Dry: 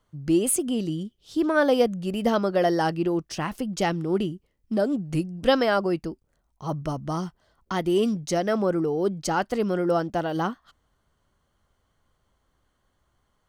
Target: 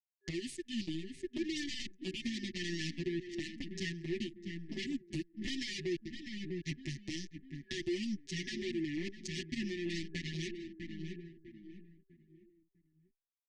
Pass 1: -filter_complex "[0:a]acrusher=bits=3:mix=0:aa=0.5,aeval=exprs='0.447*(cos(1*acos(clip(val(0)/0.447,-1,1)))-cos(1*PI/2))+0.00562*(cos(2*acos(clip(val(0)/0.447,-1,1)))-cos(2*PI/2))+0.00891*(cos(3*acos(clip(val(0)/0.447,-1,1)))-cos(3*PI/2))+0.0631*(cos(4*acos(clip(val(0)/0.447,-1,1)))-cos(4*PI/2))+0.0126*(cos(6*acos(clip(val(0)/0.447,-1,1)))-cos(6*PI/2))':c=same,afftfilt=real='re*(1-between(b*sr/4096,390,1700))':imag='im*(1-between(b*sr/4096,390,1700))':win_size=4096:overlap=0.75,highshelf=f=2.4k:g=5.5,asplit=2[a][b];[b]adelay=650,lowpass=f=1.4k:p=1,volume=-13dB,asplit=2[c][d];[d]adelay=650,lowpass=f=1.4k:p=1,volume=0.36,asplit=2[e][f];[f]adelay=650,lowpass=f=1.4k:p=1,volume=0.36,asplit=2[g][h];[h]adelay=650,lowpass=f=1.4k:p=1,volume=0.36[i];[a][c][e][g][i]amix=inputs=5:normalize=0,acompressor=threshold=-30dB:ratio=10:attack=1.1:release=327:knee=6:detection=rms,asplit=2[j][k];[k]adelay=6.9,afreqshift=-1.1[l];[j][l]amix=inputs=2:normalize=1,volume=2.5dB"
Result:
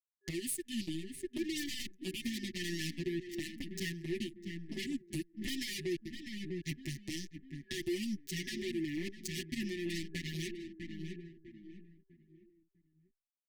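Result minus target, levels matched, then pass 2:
8000 Hz band +4.5 dB
-filter_complex "[0:a]acrusher=bits=3:mix=0:aa=0.5,aeval=exprs='0.447*(cos(1*acos(clip(val(0)/0.447,-1,1)))-cos(1*PI/2))+0.00562*(cos(2*acos(clip(val(0)/0.447,-1,1)))-cos(2*PI/2))+0.00891*(cos(3*acos(clip(val(0)/0.447,-1,1)))-cos(3*PI/2))+0.0631*(cos(4*acos(clip(val(0)/0.447,-1,1)))-cos(4*PI/2))+0.0126*(cos(6*acos(clip(val(0)/0.447,-1,1)))-cos(6*PI/2))':c=same,afftfilt=real='re*(1-between(b*sr/4096,390,1700))':imag='im*(1-between(b*sr/4096,390,1700))':win_size=4096:overlap=0.75,highshelf=f=2.4k:g=5.5,asplit=2[a][b];[b]adelay=650,lowpass=f=1.4k:p=1,volume=-13dB,asplit=2[c][d];[d]adelay=650,lowpass=f=1.4k:p=1,volume=0.36,asplit=2[e][f];[f]adelay=650,lowpass=f=1.4k:p=1,volume=0.36,asplit=2[g][h];[h]adelay=650,lowpass=f=1.4k:p=1,volume=0.36[i];[a][c][e][g][i]amix=inputs=5:normalize=0,acompressor=threshold=-30dB:ratio=10:attack=1.1:release=327:knee=6:detection=rms,lowpass=f=6.8k:w=0.5412,lowpass=f=6.8k:w=1.3066,asplit=2[j][k];[k]adelay=6.9,afreqshift=-1.1[l];[j][l]amix=inputs=2:normalize=1,volume=2.5dB"

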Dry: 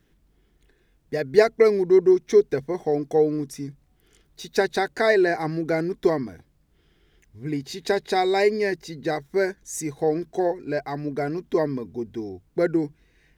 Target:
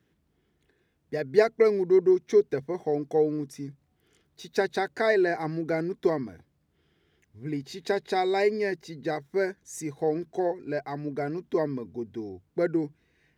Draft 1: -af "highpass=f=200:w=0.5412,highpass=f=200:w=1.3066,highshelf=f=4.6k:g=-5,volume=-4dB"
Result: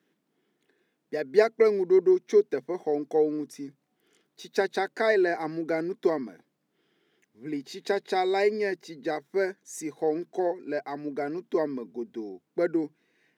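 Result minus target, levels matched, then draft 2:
125 Hz band -8.5 dB
-af "highpass=f=68:w=0.5412,highpass=f=68:w=1.3066,highshelf=f=4.6k:g=-5,volume=-4dB"

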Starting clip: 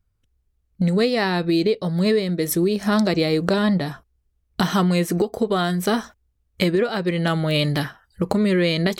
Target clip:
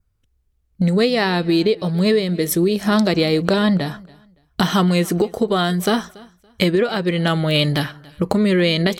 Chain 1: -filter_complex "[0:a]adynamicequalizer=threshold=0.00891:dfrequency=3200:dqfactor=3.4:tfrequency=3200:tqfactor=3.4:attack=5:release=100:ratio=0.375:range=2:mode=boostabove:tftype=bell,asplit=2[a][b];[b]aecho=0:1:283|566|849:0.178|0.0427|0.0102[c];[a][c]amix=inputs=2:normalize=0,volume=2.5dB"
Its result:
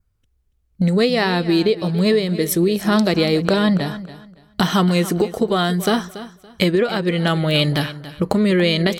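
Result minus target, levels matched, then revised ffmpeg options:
echo-to-direct +8.5 dB
-filter_complex "[0:a]adynamicequalizer=threshold=0.00891:dfrequency=3200:dqfactor=3.4:tfrequency=3200:tqfactor=3.4:attack=5:release=100:ratio=0.375:range=2:mode=boostabove:tftype=bell,asplit=2[a][b];[b]aecho=0:1:283|566:0.0668|0.016[c];[a][c]amix=inputs=2:normalize=0,volume=2.5dB"

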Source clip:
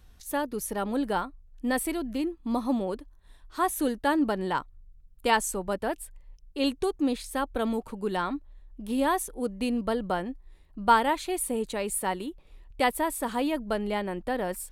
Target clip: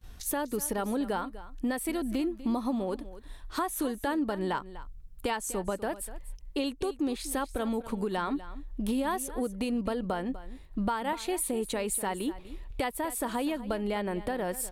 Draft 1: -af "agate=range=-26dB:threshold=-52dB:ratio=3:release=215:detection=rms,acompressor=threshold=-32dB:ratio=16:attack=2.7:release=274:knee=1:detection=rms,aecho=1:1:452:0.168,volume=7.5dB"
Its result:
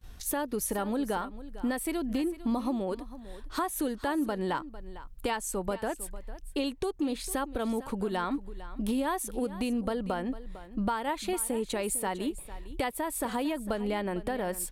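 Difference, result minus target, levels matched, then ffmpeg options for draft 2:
echo 0.205 s late
-af "agate=range=-26dB:threshold=-52dB:ratio=3:release=215:detection=rms,acompressor=threshold=-32dB:ratio=16:attack=2.7:release=274:knee=1:detection=rms,aecho=1:1:247:0.168,volume=7.5dB"

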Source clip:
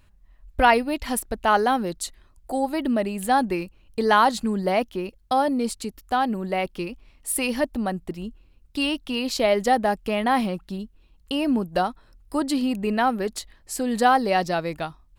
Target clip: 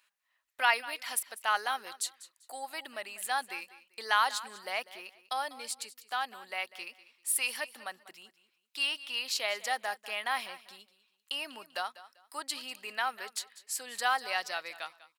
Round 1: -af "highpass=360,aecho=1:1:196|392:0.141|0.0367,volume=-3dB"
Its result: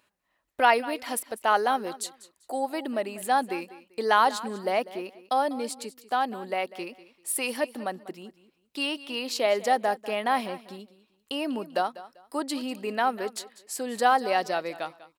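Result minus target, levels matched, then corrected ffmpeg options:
500 Hz band +9.0 dB
-af "highpass=1.4k,aecho=1:1:196|392:0.141|0.0367,volume=-3dB"

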